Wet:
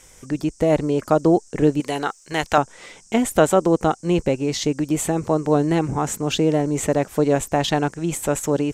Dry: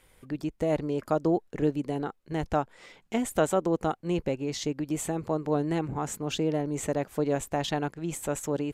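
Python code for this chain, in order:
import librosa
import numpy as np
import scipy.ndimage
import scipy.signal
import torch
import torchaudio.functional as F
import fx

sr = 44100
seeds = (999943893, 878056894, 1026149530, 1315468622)

y = fx.tilt_shelf(x, sr, db=-9.5, hz=640.0, at=(1.8, 2.58))
y = fx.dmg_noise_band(y, sr, seeds[0], low_hz=5300.0, high_hz=8700.0, level_db=-61.0)
y = y * 10.0 ** (9.0 / 20.0)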